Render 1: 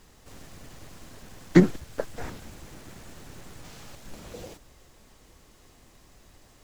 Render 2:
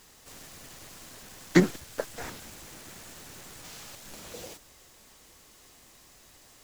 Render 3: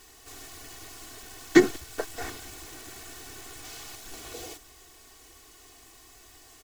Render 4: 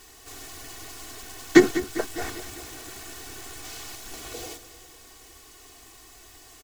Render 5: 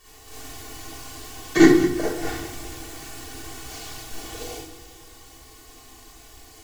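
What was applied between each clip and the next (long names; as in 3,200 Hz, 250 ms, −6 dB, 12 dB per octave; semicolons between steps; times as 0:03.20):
spectral tilt +2 dB per octave
comb filter 2.7 ms, depth 91%
repeating echo 200 ms, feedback 54%, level −14 dB; level +3 dB
convolution reverb RT60 0.55 s, pre-delay 36 ms, DRR −7 dB; level −7.5 dB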